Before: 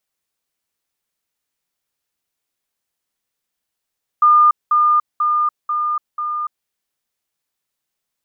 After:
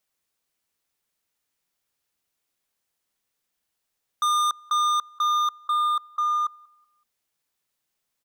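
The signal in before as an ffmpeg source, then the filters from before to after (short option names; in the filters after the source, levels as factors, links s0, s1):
-f lavfi -i "aevalsrc='pow(10,(-7.5-3*floor(t/0.49))/20)*sin(2*PI*1210*t)*clip(min(mod(t,0.49),0.29-mod(t,0.49))/0.005,0,1)':d=2.45:s=44100"
-filter_complex "[0:a]volume=11.2,asoftclip=hard,volume=0.0891,asplit=2[s0][s1];[s1]adelay=188,lowpass=f=1000:p=1,volume=0.0891,asplit=2[s2][s3];[s3]adelay=188,lowpass=f=1000:p=1,volume=0.48,asplit=2[s4][s5];[s5]adelay=188,lowpass=f=1000:p=1,volume=0.48[s6];[s0][s2][s4][s6]amix=inputs=4:normalize=0"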